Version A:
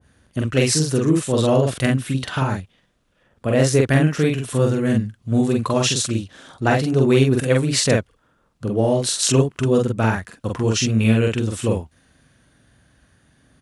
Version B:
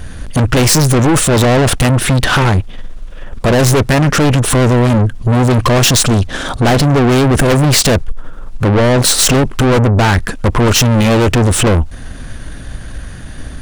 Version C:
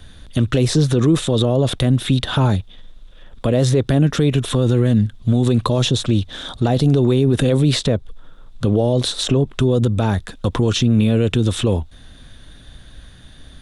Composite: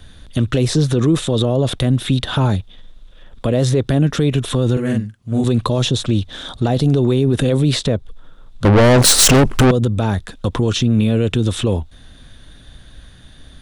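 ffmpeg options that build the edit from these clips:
-filter_complex "[2:a]asplit=3[a][b][c];[a]atrim=end=4.772[d];[0:a]atrim=start=4.768:end=5.442[e];[b]atrim=start=5.438:end=8.652[f];[1:a]atrim=start=8.648:end=9.712[g];[c]atrim=start=9.708[h];[d][e]acrossfade=d=0.004:c1=hsin:c2=hsin[i];[i][f]acrossfade=d=0.004:c1=hsin:c2=hsin[j];[j][g]acrossfade=d=0.004:c1=hsin:c2=hsin[k];[k][h]acrossfade=d=0.004:c1=hsin:c2=hsin"

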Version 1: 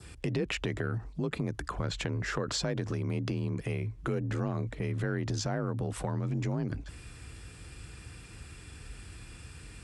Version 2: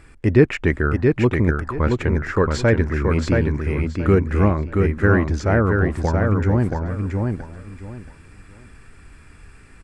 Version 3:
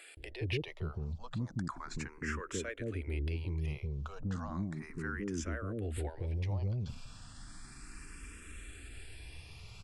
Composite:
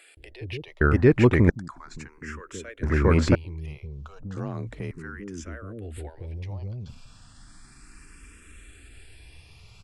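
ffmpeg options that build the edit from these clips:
-filter_complex "[1:a]asplit=2[a][b];[2:a]asplit=4[c][d][e][f];[c]atrim=end=0.812[g];[a]atrim=start=0.808:end=1.502[h];[d]atrim=start=1.498:end=2.832[i];[b]atrim=start=2.828:end=3.352[j];[e]atrim=start=3.348:end=4.372[k];[0:a]atrim=start=4.368:end=4.912[l];[f]atrim=start=4.908[m];[g][h]acrossfade=d=0.004:c1=hsin:c2=hsin[n];[n][i]acrossfade=d=0.004:c1=hsin:c2=hsin[o];[o][j]acrossfade=d=0.004:c1=hsin:c2=hsin[p];[p][k]acrossfade=d=0.004:c1=hsin:c2=hsin[q];[q][l]acrossfade=d=0.004:c1=hsin:c2=hsin[r];[r][m]acrossfade=d=0.004:c1=hsin:c2=hsin"

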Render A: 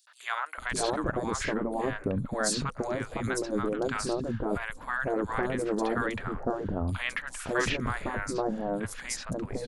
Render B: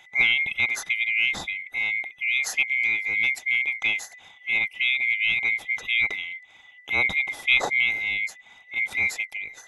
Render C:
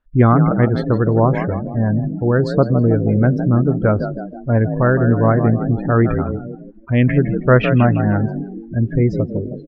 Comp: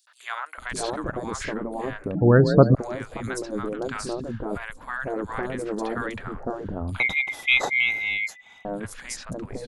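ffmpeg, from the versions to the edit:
-filter_complex "[0:a]asplit=3[a][b][c];[a]atrim=end=2.152[d];[2:a]atrim=start=2.148:end=2.752[e];[b]atrim=start=2.748:end=7.002[f];[1:a]atrim=start=6.998:end=8.652[g];[c]atrim=start=8.648[h];[d][e]acrossfade=d=0.004:c1=hsin:c2=hsin[i];[i][f]acrossfade=d=0.004:c1=hsin:c2=hsin[j];[j][g]acrossfade=d=0.004:c1=hsin:c2=hsin[k];[k][h]acrossfade=d=0.004:c1=hsin:c2=hsin"

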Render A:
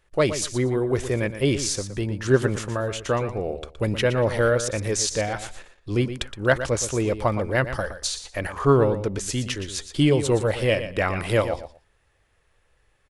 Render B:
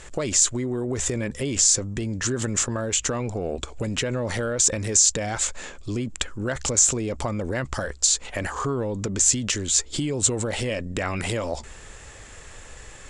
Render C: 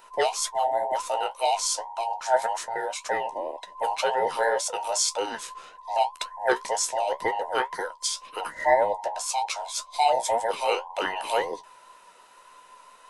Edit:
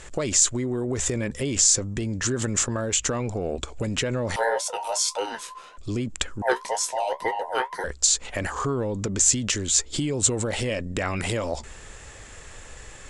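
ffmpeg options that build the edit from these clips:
-filter_complex "[2:a]asplit=2[a][b];[1:a]asplit=3[c][d][e];[c]atrim=end=4.362[f];[a]atrim=start=4.358:end=5.772[g];[d]atrim=start=5.768:end=6.422[h];[b]atrim=start=6.418:end=7.842[i];[e]atrim=start=7.838[j];[f][g]acrossfade=d=0.004:c1=hsin:c2=hsin[k];[k][h]acrossfade=d=0.004:c1=hsin:c2=hsin[l];[l][i]acrossfade=d=0.004:c1=hsin:c2=hsin[m];[m][j]acrossfade=d=0.004:c1=hsin:c2=hsin"

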